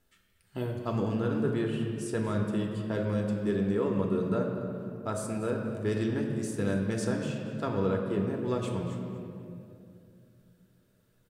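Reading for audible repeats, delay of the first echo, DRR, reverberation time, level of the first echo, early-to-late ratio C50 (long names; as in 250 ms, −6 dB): 1, 236 ms, 0.5 dB, 2.6 s, −15.0 dB, 3.5 dB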